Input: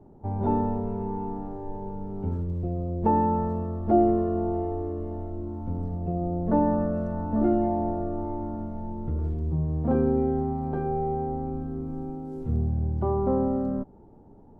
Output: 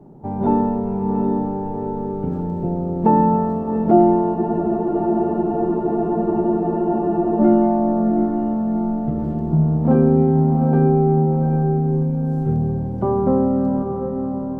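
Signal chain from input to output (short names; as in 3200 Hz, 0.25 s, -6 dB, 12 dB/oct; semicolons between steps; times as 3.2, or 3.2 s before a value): resonant low shelf 110 Hz -7.5 dB, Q 3; diffused feedback echo 0.751 s, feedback 53%, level -6.5 dB; spectral freeze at 4.36, 3.03 s; gain +6.5 dB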